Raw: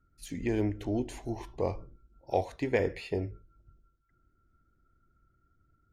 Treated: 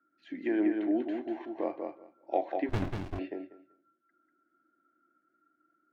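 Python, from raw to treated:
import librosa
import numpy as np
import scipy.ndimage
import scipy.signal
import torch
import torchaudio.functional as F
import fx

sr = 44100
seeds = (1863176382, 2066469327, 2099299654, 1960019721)

y = fx.cabinet(x, sr, low_hz=280.0, low_slope=24, high_hz=2900.0, hz=(310.0, 450.0, 640.0, 960.0, 1600.0, 2500.0), db=(8, -9, 3, -5, 7, -4))
y = fx.echo_feedback(y, sr, ms=192, feedback_pct=15, wet_db=-5)
y = fx.running_max(y, sr, window=65, at=(2.69, 3.19))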